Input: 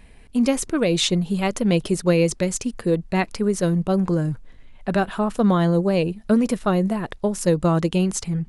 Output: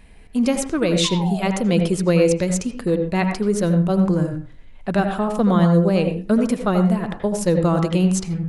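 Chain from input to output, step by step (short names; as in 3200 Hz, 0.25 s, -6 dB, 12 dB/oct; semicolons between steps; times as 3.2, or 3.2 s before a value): painted sound fall, 1.04–1.49, 530–1100 Hz -33 dBFS; reverb RT60 0.35 s, pre-delay 72 ms, DRR 6 dB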